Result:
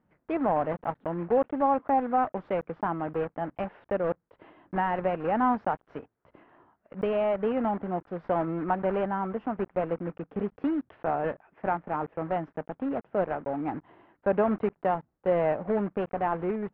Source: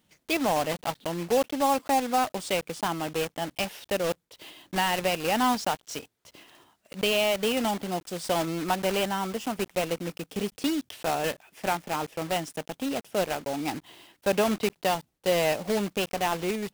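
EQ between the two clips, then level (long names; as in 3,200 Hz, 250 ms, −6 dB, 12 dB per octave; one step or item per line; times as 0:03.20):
low-pass filter 1,600 Hz 24 dB per octave
0.0 dB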